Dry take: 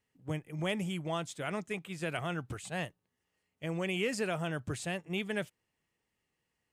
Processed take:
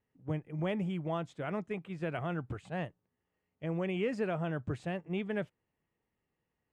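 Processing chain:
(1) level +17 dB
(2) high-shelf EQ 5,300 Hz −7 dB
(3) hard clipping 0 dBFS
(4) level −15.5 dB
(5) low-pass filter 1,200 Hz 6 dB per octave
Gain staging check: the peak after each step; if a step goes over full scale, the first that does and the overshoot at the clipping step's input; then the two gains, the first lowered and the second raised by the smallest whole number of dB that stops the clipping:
−4.0, −4.5, −4.5, −20.0, −22.5 dBFS
no step passes full scale

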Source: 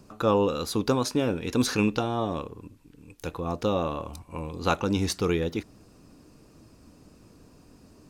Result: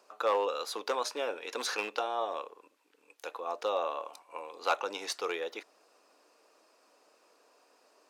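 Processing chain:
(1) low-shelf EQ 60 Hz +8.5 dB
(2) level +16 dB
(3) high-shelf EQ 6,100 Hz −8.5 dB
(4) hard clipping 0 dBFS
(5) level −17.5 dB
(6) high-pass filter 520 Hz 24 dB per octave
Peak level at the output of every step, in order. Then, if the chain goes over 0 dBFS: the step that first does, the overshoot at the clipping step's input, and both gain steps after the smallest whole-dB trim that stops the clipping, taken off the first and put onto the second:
−9.5, +6.5, +6.0, 0.0, −17.5, −13.0 dBFS
step 2, 6.0 dB
step 2 +10 dB, step 5 −11.5 dB

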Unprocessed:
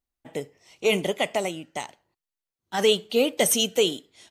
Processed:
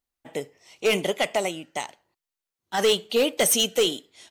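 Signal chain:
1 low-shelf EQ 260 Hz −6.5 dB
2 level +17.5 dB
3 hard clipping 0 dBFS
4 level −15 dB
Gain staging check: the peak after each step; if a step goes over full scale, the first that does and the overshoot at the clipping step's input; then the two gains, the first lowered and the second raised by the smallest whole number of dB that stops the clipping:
−9.5, +8.0, 0.0, −15.0 dBFS
step 2, 8.0 dB
step 2 +9.5 dB, step 4 −7 dB

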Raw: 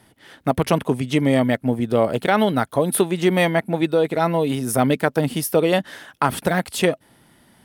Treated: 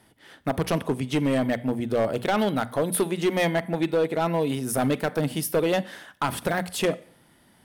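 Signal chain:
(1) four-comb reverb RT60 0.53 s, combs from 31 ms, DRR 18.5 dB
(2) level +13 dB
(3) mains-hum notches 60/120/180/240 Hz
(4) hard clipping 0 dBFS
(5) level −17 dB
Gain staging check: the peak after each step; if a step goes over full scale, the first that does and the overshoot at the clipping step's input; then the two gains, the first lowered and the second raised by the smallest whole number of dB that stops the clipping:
−3.0, +10.0, +10.0, 0.0, −17.0 dBFS
step 2, 10.0 dB
step 2 +3 dB, step 5 −7 dB

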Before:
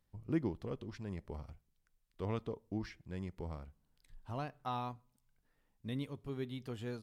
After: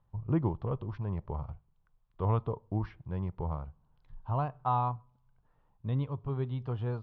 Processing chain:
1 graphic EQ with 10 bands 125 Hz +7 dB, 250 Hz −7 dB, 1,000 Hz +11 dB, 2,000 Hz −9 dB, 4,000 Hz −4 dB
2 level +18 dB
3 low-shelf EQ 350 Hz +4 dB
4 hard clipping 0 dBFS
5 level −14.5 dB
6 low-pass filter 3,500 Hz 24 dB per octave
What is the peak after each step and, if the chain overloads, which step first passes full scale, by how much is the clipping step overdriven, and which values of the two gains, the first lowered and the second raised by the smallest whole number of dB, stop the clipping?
−21.0, −3.0, −2.0, −2.0, −16.5, −16.5 dBFS
no step passes full scale

